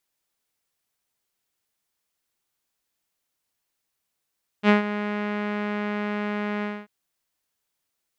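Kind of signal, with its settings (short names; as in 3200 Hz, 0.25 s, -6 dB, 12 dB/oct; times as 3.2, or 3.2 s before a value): synth note saw G#3 12 dB/oct, low-pass 2100 Hz, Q 1.8, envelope 0.5 oct, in 0.10 s, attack 61 ms, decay 0.13 s, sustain -13 dB, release 0.24 s, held 2.00 s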